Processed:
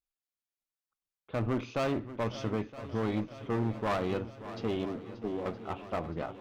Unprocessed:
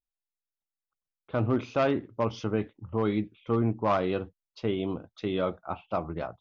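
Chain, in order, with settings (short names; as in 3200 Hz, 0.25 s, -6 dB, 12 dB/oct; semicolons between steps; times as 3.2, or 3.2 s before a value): 4.85–5.46 Chebyshev band-pass 210–450 Hz, order 2; one-sided clip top -32 dBFS, bottom -20.5 dBFS; swung echo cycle 0.968 s, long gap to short 1.5:1, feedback 58%, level -14 dB; on a send at -17 dB: reverb RT60 1.0 s, pre-delay 3 ms; on the sum: gain -2 dB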